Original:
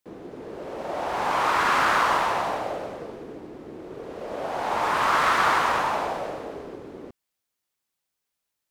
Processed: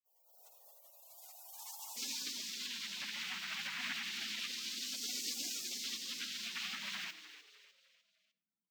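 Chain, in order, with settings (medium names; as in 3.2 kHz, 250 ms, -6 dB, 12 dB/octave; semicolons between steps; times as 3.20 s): recorder AGC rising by 42 dB/s; elliptic high-pass 1.6 kHz, stop band 80 dB, from 1.96 s 330 Hz; spectral gate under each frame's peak -30 dB weak; peaking EQ 10 kHz -12.5 dB 0.71 oct; frequency-shifting echo 302 ms, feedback 42%, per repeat +110 Hz, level -13 dB; reverberation RT60 0.55 s, pre-delay 58 ms, DRR 15 dB; trim +6.5 dB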